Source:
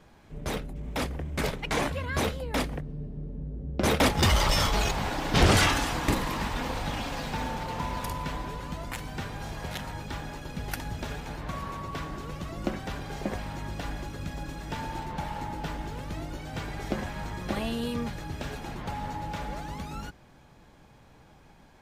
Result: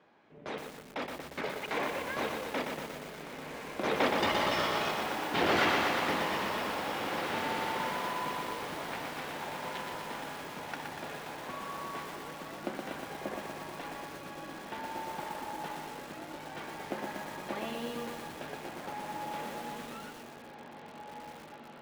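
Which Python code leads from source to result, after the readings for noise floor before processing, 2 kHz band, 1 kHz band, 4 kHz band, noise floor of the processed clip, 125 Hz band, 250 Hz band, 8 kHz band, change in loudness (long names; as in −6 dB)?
−55 dBFS, −2.0 dB, −1.5 dB, −5.0 dB, −49 dBFS, −16.5 dB, −6.5 dB, −9.5 dB, −4.5 dB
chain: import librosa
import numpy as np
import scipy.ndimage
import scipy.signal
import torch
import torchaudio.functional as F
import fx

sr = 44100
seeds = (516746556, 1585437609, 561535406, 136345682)

p1 = fx.bandpass_edges(x, sr, low_hz=290.0, high_hz=3200.0)
p2 = p1 + fx.echo_diffused(p1, sr, ms=1906, feedback_pct=52, wet_db=-7, dry=0)
p3 = fx.echo_crushed(p2, sr, ms=120, feedback_pct=80, bits=7, wet_db=-3.5)
y = p3 * librosa.db_to_amplitude(-4.5)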